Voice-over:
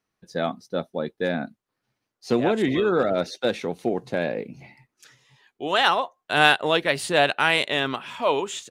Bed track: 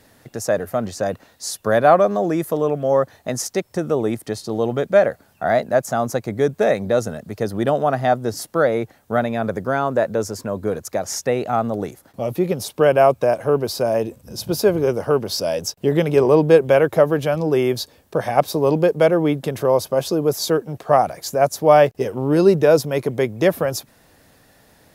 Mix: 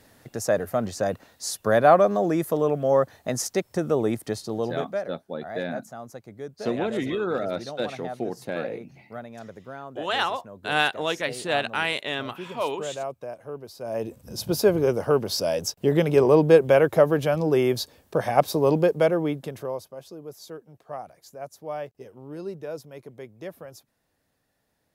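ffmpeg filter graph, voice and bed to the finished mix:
-filter_complex "[0:a]adelay=4350,volume=0.531[s0];[1:a]volume=4.22,afade=t=out:st=4.3:d=0.75:silence=0.16788,afade=t=in:st=13.79:d=0.45:silence=0.16788,afade=t=out:st=18.71:d=1.2:silence=0.125893[s1];[s0][s1]amix=inputs=2:normalize=0"

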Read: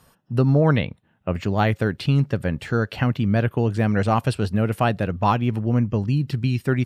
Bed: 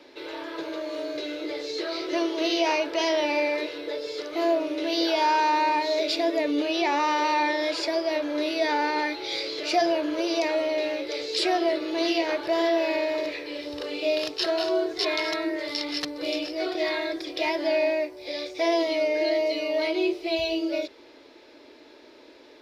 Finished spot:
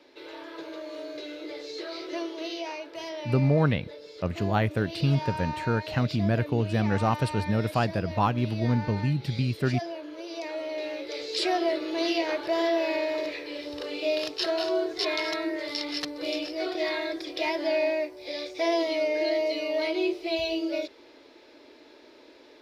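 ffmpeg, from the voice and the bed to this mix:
-filter_complex "[0:a]adelay=2950,volume=0.562[s0];[1:a]volume=1.68,afade=t=out:st=2.05:d=0.68:silence=0.473151,afade=t=in:st=10.27:d=1.24:silence=0.298538[s1];[s0][s1]amix=inputs=2:normalize=0"

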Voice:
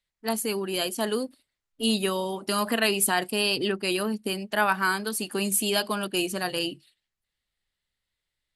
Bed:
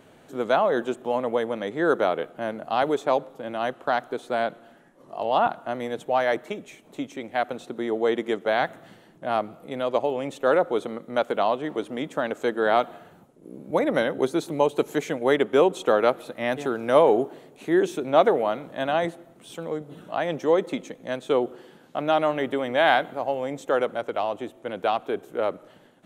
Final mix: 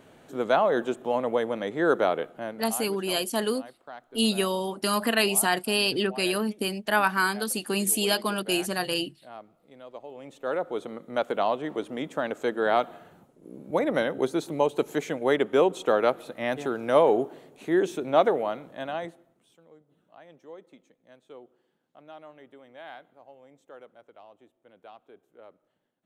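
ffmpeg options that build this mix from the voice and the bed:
-filter_complex "[0:a]adelay=2350,volume=1.06[s0];[1:a]volume=5.96,afade=t=out:st=2.16:d=0.69:silence=0.125893,afade=t=in:st=10.03:d=1.28:silence=0.149624,afade=t=out:st=18.16:d=1.41:silence=0.0794328[s1];[s0][s1]amix=inputs=2:normalize=0"

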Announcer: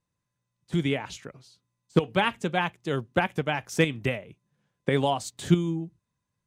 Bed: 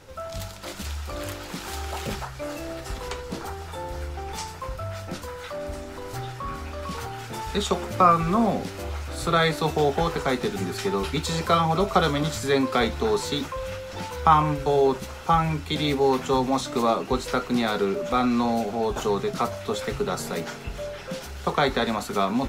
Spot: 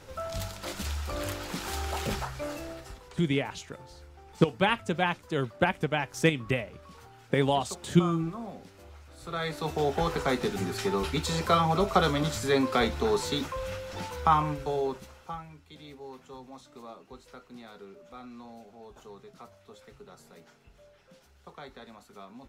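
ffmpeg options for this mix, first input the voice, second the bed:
-filter_complex "[0:a]adelay=2450,volume=0.891[s0];[1:a]volume=5.01,afade=t=out:st=2.3:d=0.74:silence=0.141254,afade=t=in:st=9.2:d=0.95:silence=0.177828,afade=t=out:st=13.87:d=1.6:silence=0.0944061[s1];[s0][s1]amix=inputs=2:normalize=0"

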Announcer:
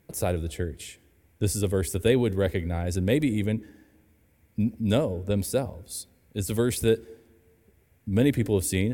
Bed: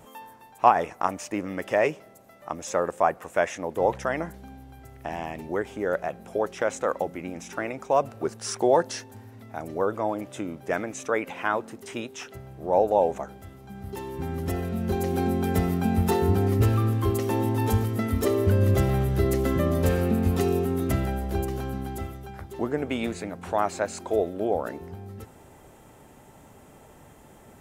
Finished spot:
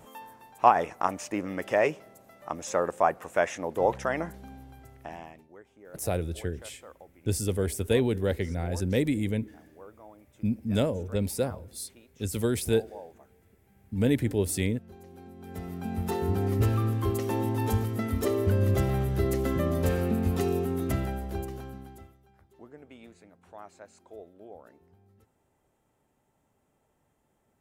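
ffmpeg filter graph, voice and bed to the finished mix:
-filter_complex "[0:a]adelay=5850,volume=0.75[s0];[1:a]volume=7.94,afade=t=out:st=4.62:d=0.85:silence=0.0841395,afade=t=in:st=15.36:d=1.25:silence=0.105925,afade=t=out:st=20.99:d=1.18:silence=0.125893[s1];[s0][s1]amix=inputs=2:normalize=0"

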